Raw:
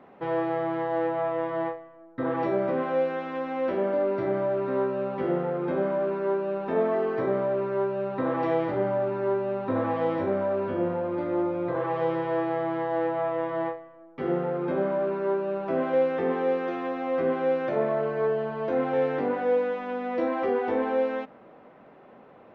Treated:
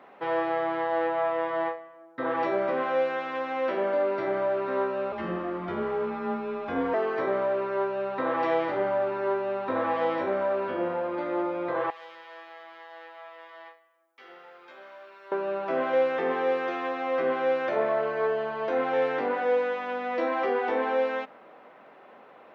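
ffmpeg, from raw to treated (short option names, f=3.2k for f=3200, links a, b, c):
-filter_complex "[0:a]asettb=1/sr,asplit=3[a][b][c];[a]atrim=end=5.124[d];[b]atrim=start=5.12:end=6.94,asetpts=PTS-STARTPTS,afade=t=in:d=0.004:c=qsin,afade=t=out:st=1.816:d=0.004:c=qsin,afreqshift=-170[e];[c]atrim=start=6.936[f];[d][e]acrossfade=d=0.004:c1=hsin:c2=qsin[g];[g][f]acrossfade=d=0.004:c1=qsin:c2=hsin,asettb=1/sr,asplit=3[h][i][j];[h]atrim=end=11.904[k];[i]atrim=start=11.9:end=15.32,asetpts=PTS-STARTPTS,afade=t=in:d=0.004:c=qsin,afade=t=out:st=3.416:d=0.004:c=qsin,aderivative[l];[j]atrim=start=15.316[m];[k][l]acrossfade=d=0.004:c1=hsin:c2=qsin[n];[n][m]acrossfade=d=0.004:c1=qsin:c2=hsin,highpass=f=910:p=1,volume=5.5dB"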